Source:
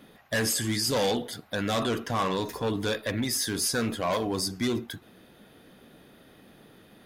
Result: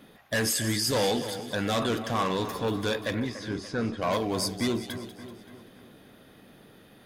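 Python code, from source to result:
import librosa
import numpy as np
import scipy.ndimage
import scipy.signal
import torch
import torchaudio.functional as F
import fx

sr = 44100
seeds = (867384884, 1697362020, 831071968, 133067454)

y = fx.spacing_loss(x, sr, db_at_10k=28, at=(3.2, 4.02))
y = fx.echo_split(y, sr, split_hz=2100.0, low_ms=289, high_ms=191, feedback_pct=52, wet_db=-11.5)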